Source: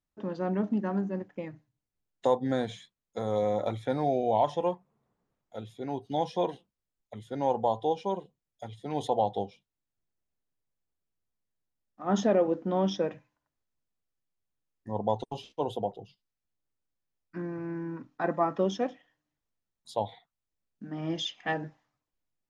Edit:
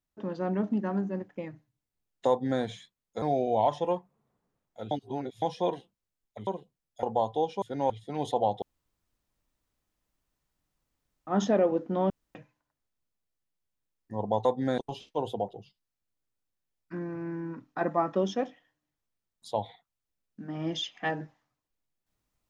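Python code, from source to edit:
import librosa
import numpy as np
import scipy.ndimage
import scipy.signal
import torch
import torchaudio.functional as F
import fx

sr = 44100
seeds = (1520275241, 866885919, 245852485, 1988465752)

y = fx.edit(x, sr, fx.duplicate(start_s=2.29, length_s=0.33, to_s=15.21),
    fx.cut(start_s=3.22, length_s=0.76),
    fx.reverse_span(start_s=5.67, length_s=0.51),
    fx.swap(start_s=7.23, length_s=0.28, other_s=8.1, other_length_s=0.56),
    fx.room_tone_fill(start_s=9.38, length_s=2.65),
    fx.room_tone_fill(start_s=12.86, length_s=0.25), tone=tone)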